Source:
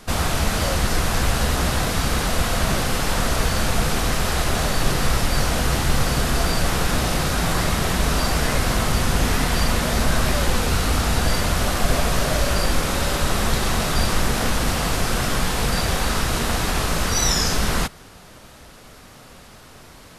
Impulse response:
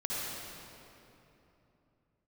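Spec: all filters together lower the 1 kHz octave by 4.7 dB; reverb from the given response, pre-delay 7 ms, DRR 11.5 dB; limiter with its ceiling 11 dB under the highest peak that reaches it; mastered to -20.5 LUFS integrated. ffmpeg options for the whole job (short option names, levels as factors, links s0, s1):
-filter_complex "[0:a]equalizer=f=1000:t=o:g=-6.5,alimiter=limit=0.15:level=0:latency=1,asplit=2[s0][s1];[1:a]atrim=start_sample=2205,adelay=7[s2];[s1][s2]afir=irnorm=-1:irlink=0,volume=0.141[s3];[s0][s3]amix=inputs=2:normalize=0,volume=2"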